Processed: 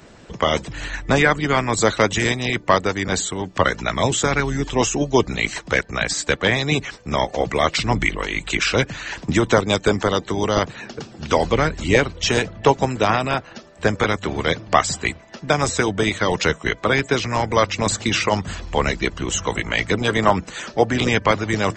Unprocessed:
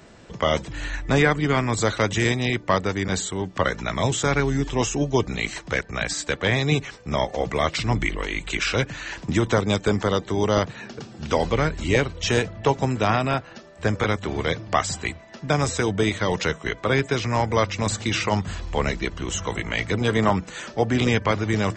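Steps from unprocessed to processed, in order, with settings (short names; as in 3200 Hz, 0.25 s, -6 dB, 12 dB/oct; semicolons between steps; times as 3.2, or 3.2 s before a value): harmonic-percussive split percussive +8 dB; gain -2 dB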